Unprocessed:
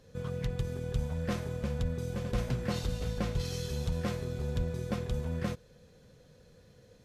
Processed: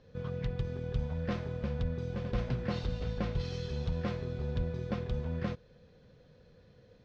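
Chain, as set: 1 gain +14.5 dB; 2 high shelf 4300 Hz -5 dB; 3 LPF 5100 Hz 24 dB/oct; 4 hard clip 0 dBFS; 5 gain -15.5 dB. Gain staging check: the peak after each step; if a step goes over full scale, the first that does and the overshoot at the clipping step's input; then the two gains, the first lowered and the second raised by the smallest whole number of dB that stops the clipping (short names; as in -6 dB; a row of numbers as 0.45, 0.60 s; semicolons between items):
-3.0, -3.0, -3.0, -3.0, -18.5 dBFS; no overload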